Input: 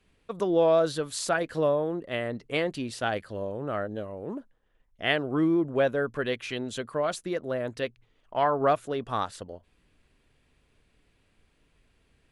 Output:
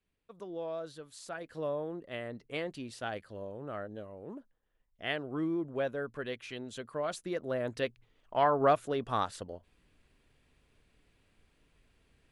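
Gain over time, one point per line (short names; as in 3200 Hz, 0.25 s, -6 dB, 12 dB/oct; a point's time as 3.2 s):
1.21 s -17 dB
1.78 s -9 dB
6.71 s -9 dB
7.74 s -2 dB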